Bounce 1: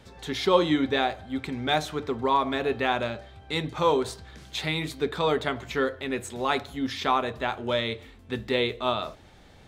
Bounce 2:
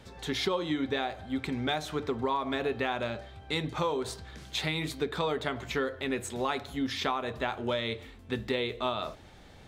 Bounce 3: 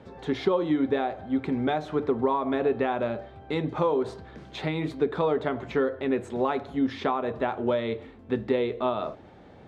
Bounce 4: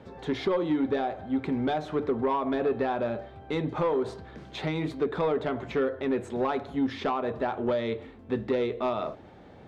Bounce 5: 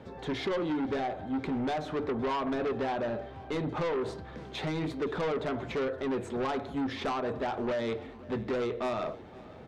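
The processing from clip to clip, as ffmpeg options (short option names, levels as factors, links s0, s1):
-af "acompressor=threshold=0.0501:ratio=10"
-af "bandpass=f=380:t=q:w=0.53:csg=0,volume=2.24"
-af "asoftclip=type=tanh:threshold=0.119"
-af "aeval=exprs='0.119*(cos(1*acos(clip(val(0)/0.119,-1,1)))-cos(1*PI/2))+0.0211*(cos(5*acos(clip(val(0)/0.119,-1,1)))-cos(5*PI/2))':c=same,aecho=1:1:519|1038|1557|2076:0.0841|0.0471|0.0264|0.0148,volume=0.562"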